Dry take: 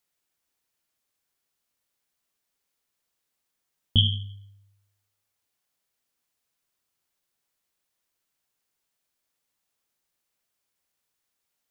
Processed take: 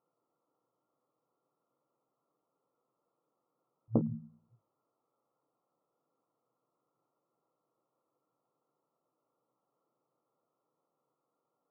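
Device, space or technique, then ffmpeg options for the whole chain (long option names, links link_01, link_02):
limiter into clipper: -filter_complex "[0:a]alimiter=limit=-10.5dB:level=0:latency=1:release=223,asoftclip=type=hard:threshold=-16dB,asplit=3[link_01][link_02][link_03];[link_01]afade=type=out:start_time=4.1:duration=0.02[link_04];[link_02]lowshelf=frequency=110:gain=11,afade=type=in:start_time=4.1:duration=0.02,afade=type=out:start_time=4.53:duration=0.02[link_05];[link_03]afade=type=in:start_time=4.53:duration=0.02[link_06];[link_04][link_05][link_06]amix=inputs=3:normalize=0,afftfilt=real='re*between(b*sr/4096,110,1400)':imag='im*between(b*sr/4096,110,1400)':win_size=4096:overlap=0.75,equalizer=frequency=200:width_type=o:width=0.33:gain=-4,equalizer=frequency=315:width_type=o:width=0.33:gain=5,equalizer=frequency=500:width_type=o:width=0.33:gain=7,volume=7dB"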